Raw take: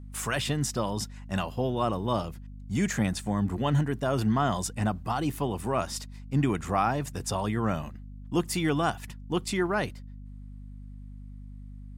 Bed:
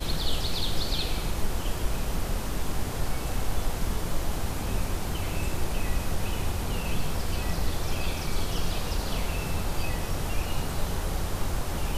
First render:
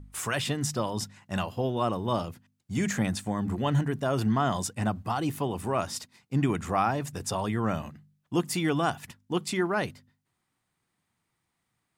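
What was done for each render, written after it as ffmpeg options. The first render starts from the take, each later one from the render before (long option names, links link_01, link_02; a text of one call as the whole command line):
ffmpeg -i in.wav -af "bandreject=frequency=50:width_type=h:width=4,bandreject=frequency=100:width_type=h:width=4,bandreject=frequency=150:width_type=h:width=4,bandreject=frequency=200:width_type=h:width=4,bandreject=frequency=250:width_type=h:width=4" out.wav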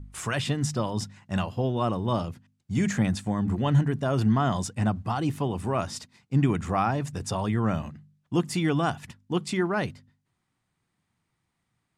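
ffmpeg -i in.wav -af "lowpass=9500,bass=frequency=250:gain=5,treble=frequency=4000:gain=-1" out.wav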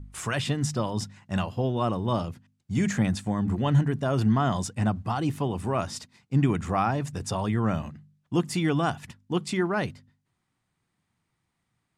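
ffmpeg -i in.wav -af anull out.wav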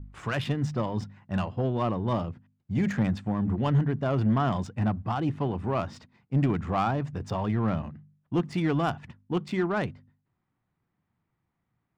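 ffmpeg -i in.wav -af "adynamicsmooth=sensitivity=2.5:basefreq=2100,asoftclip=type=tanh:threshold=-15.5dB" out.wav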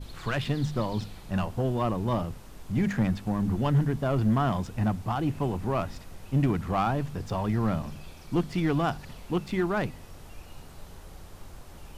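ffmpeg -i in.wav -i bed.wav -filter_complex "[1:a]volume=-16.5dB[link_01];[0:a][link_01]amix=inputs=2:normalize=0" out.wav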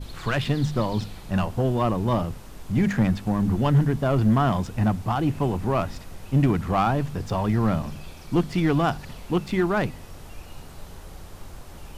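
ffmpeg -i in.wav -af "volume=4.5dB" out.wav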